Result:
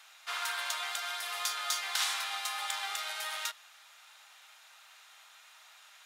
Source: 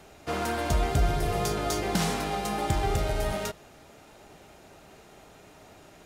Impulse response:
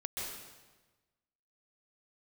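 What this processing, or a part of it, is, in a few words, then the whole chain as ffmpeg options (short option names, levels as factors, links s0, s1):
headphones lying on a table: -af "highpass=f=1100:w=0.5412,highpass=f=1100:w=1.3066,equalizer=f=3600:t=o:w=0.45:g=5.5"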